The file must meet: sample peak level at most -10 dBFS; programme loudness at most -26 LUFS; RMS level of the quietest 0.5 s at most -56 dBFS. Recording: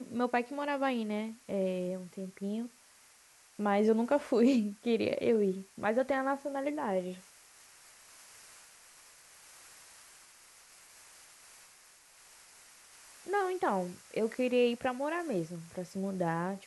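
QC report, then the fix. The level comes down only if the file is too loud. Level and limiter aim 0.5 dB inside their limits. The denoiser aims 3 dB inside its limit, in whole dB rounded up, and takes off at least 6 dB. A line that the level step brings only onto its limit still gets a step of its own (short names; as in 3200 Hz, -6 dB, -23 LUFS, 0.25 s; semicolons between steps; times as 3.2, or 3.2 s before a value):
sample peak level -16.0 dBFS: OK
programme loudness -32.5 LUFS: OK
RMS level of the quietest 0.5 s -61 dBFS: OK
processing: none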